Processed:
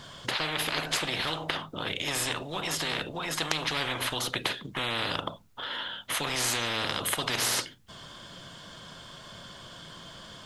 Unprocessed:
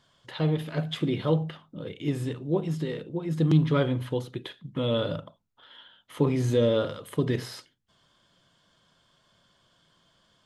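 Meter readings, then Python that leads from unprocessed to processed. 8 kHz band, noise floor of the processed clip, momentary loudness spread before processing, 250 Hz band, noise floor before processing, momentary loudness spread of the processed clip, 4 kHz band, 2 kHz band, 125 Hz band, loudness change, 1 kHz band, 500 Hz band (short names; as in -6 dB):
+18.0 dB, -48 dBFS, 15 LU, -11.0 dB, -67 dBFS, 18 LU, +10.0 dB, +11.5 dB, -13.5 dB, -2.0 dB, +6.5 dB, -9.0 dB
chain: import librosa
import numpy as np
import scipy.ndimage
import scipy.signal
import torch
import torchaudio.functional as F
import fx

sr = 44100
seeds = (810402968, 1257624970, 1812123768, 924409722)

y = fx.spectral_comp(x, sr, ratio=10.0)
y = y * 10.0 ** (6.0 / 20.0)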